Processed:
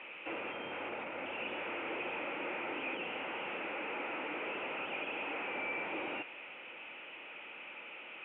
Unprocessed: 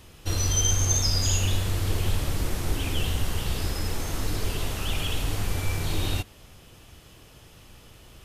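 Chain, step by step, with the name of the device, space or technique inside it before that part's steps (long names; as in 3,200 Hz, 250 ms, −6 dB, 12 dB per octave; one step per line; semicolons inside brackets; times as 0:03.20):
digital answering machine (band-pass filter 400–3,100 Hz; linear delta modulator 16 kbit/s, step −46 dBFS; loudspeaker in its box 400–3,100 Hz, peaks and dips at 420 Hz −8 dB, 690 Hz −8 dB, 1,100 Hz −8 dB, 1,700 Hz −7 dB, 2,500 Hz +9 dB)
high-shelf EQ 5,500 Hz −8 dB
level +6 dB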